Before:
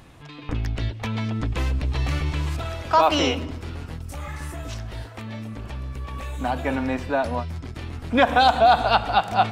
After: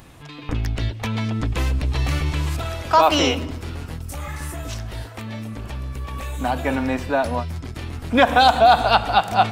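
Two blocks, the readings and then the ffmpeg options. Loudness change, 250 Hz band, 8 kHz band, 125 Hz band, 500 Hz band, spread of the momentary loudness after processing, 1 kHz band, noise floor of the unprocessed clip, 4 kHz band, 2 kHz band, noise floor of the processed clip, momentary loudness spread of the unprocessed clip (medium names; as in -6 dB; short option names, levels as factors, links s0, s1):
+2.5 dB, +2.5 dB, +5.5 dB, +2.5 dB, +2.5 dB, 17 LU, +2.5 dB, -41 dBFS, +3.5 dB, +3.0 dB, -38 dBFS, 17 LU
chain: -af "highshelf=f=8500:g=9,volume=1.33"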